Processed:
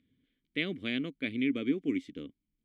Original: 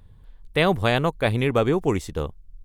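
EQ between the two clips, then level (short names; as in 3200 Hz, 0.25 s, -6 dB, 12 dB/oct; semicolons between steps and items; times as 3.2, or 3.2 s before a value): vowel filter i; low shelf 88 Hz -9.5 dB; +2.5 dB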